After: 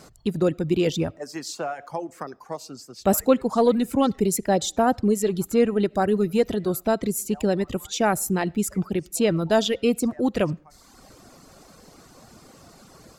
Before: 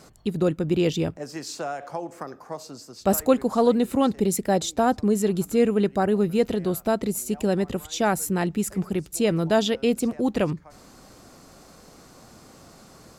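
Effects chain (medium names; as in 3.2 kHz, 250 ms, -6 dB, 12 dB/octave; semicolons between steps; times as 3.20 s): in parallel at -12 dB: saturation -17.5 dBFS, distortion -12 dB; on the sum: reverberation RT60 0.40 s, pre-delay 30 ms, DRR 16 dB; reverb removal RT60 0.85 s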